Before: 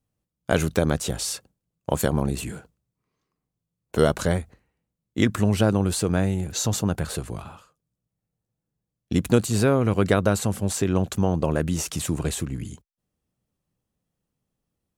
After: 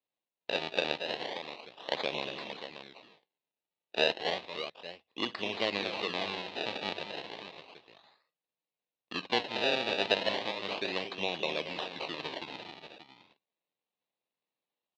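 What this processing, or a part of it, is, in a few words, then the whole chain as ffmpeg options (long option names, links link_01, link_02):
circuit-bent sampling toy: -af "aecho=1:1:50|60|228|276|580:0.126|0.112|0.316|0.15|0.299,acrusher=samples=28:mix=1:aa=0.000001:lfo=1:lforange=28:lforate=0.33,highpass=510,equalizer=frequency=1400:width_type=q:width=4:gain=-10,equalizer=frequency=2700:width_type=q:width=4:gain=7,equalizer=frequency=3900:width_type=q:width=4:gain=10,lowpass=frequency=4400:width=0.5412,lowpass=frequency=4400:width=1.3066,volume=-6.5dB"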